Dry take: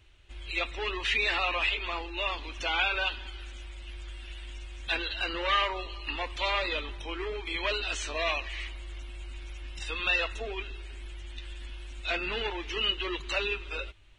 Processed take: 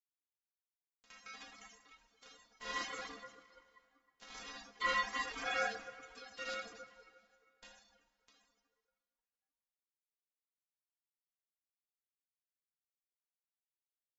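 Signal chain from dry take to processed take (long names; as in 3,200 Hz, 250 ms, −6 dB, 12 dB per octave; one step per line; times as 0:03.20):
source passing by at 0:04.43, 7 m/s, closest 1.6 metres
high-pass filter 50 Hz 6 dB per octave
flat-topped bell 1,300 Hz +11 dB
bit reduction 6 bits
linear-phase brick-wall low-pass 7,300 Hz
stiff-string resonator 240 Hz, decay 0.32 s, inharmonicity 0.002
dense smooth reverb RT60 2.6 s, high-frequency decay 0.7×, DRR −6 dB
reverb reduction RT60 1.7 s
ring modulation 450 Hz
level +9 dB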